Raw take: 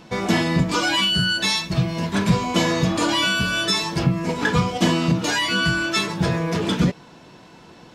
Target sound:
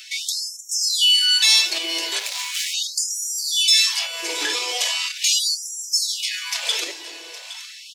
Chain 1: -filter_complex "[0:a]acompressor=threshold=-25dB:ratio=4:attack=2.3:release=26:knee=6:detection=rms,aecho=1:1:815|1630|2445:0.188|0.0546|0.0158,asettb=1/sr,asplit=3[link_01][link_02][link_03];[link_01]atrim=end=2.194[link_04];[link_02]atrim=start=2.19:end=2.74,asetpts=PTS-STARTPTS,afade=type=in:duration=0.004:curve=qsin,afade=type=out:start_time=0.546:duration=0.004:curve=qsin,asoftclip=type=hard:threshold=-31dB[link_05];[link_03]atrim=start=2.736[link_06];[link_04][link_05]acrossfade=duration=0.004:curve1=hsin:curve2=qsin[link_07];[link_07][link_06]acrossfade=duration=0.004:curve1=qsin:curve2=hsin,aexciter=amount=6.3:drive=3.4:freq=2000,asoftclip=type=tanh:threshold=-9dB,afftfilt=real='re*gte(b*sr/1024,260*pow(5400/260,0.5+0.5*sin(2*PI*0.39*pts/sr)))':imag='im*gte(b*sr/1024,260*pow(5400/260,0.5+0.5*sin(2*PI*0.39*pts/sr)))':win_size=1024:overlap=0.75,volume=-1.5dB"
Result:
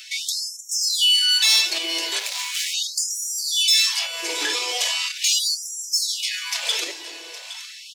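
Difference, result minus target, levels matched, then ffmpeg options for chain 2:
soft clipping: distortion +10 dB
-filter_complex "[0:a]acompressor=threshold=-25dB:ratio=4:attack=2.3:release=26:knee=6:detection=rms,aecho=1:1:815|1630|2445:0.188|0.0546|0.0158,asettb=1/sr,asplit=3[link_01][link_02][link_03];[link_01]atrim=end=2.194[link_04];[link_02]atrim=start=2.19:end=2.74,asetpts=PTS-STARTPTS,afade=type=in:duration=0.004:curve=qsin,afade=type=out:start_time=0.546:duration=0.004:curve=qsin,asoftclip=type=hard:threshold=-31dB[link_05];[link_03]atrim=start=2.736[link_06];[link_04][link_05]acrossfade=duration=0.004:curve1=hsin:curve2=qsin[link_07];[link_07][link_06]acrossfade=duration=0.004:curve1=qsin:curve2=hsin,aexciter=amount=6.3:drive=3.4:freq=2000,asoftclip=type=tanh:threshold=-2.5dB,afftfilt=real='re*gte(b*sr/1024,260*pow(5400/260,0.5+0.5*sin(2*PI*0.39*pts/sr)))':imag='im*gte(b*sr/1024,260*pow(5400/260,0.5+0.5*sin(2*PI*0.39*pts/sr)))':win_size=1024:overlap=0.75,volume=-1.5dB"

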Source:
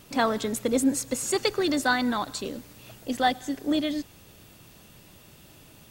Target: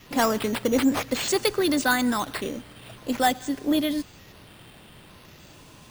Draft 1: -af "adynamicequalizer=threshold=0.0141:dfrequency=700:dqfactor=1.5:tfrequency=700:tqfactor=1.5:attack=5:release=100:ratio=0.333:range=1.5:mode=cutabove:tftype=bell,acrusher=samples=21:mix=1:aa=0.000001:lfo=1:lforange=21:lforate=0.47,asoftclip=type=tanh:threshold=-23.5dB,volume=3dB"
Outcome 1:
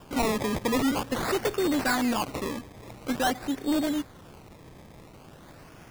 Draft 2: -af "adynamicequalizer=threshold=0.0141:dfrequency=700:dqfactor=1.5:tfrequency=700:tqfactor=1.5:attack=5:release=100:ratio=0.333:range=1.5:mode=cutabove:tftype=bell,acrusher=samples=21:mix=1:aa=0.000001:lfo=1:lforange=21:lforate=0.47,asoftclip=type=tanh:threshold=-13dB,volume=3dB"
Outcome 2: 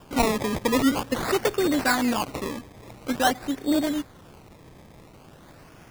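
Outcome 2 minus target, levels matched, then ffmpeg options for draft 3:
sample-and-hold swept by an LFO: distortion +9 dB
-af "adynamicequalizer=threshold=0.0141:dfrequency=700:dqfactor=1.5:tfrequency=700:tqfactor=1.5:attack=5:release=100:ratio=0.333:range=1.5:mode=cutabove:tftype=bell,acrusher=samples=5:mix=1:aa=0.000001:lfo=1:lforange=5:lforate=0.47,asoftclip=type=tanh:threshold=-13dB,volume=3dB"

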